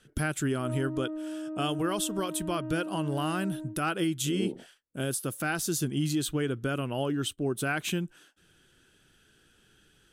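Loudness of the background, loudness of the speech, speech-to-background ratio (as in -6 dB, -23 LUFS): -38.0 LUFS, -31.0 LUFS, 7.0 dB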